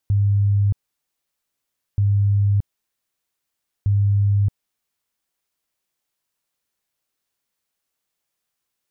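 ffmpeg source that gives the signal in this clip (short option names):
-f lavfi -i "aevalsrc='0.2*sin(2*PI*101*mod(t,1.88))*lt(mod(t,1.88),63/101)':d=5.64:s=44100"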